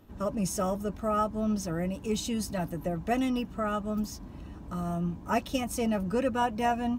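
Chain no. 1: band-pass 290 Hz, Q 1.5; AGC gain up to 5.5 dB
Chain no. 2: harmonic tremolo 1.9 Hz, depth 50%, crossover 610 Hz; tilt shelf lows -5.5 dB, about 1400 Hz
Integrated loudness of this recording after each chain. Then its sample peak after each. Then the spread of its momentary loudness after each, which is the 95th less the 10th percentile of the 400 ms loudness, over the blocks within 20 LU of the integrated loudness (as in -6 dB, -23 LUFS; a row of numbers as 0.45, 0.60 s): -30.0, -36.0 LUFS; -15.0, -19.0 dBFS; 9, 8 LU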